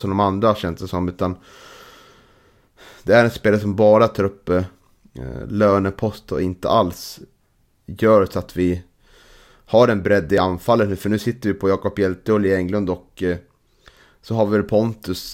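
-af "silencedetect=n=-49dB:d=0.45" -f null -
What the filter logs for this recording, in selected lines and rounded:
silence_start: 7.29
silence_end: 7.88 | silence_duration: 0.59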